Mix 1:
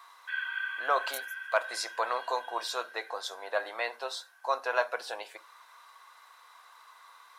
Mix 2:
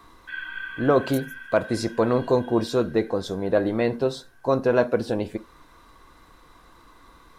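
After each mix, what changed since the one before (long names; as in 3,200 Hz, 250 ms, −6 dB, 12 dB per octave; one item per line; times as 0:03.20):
master: remove high-pass filter 770 Hz 24 dB per octave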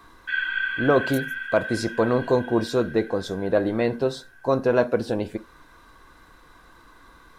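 background +8.5 dB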